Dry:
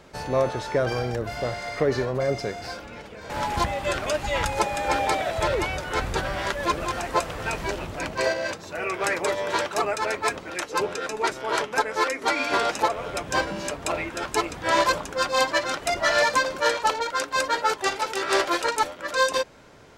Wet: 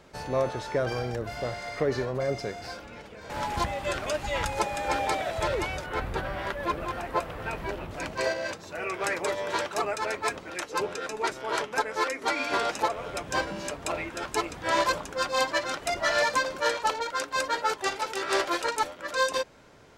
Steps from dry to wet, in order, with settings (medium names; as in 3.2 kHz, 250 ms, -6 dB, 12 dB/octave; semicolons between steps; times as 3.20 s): 5.86–7.91 s: peaking EQ 6.8 kHz -11 dB 1.6 oct; trim -4 dB